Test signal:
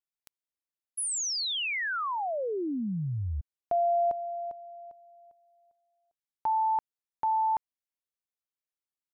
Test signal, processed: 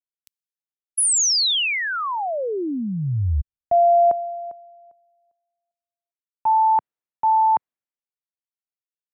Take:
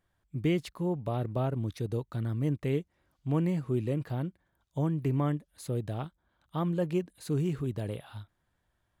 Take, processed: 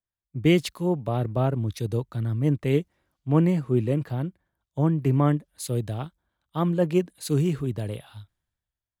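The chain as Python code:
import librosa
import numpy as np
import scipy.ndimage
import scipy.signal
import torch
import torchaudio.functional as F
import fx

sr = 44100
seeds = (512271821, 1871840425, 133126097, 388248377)

y = fx.band_widen(x, sr, depth_pct=70)
y = y * librosa.db_to_amplitude(6.5)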